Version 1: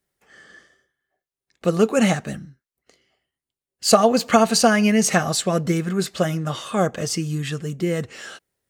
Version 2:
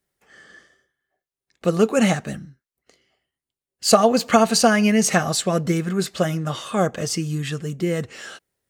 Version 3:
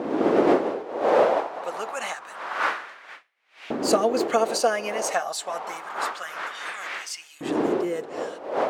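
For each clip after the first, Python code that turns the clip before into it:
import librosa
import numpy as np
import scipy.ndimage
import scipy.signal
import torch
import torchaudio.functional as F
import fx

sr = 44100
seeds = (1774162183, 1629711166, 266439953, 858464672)

y1 = x
y2 = fx.dmg_wind(y1, sr, seeds[0], corner_hz=530.0, level_db=-17.0)
y2 = fx.filter_lfo_highpass(y2, sr, shape='saw_up', hz=0.27, low_hz=270.0, high_hz=2700.0, q=2.0)
y2 = fx.hum_notches(y2, sr, base_hz=50, count=3)
y2 = y2 * librosa.db_to_amplitude(-8.5)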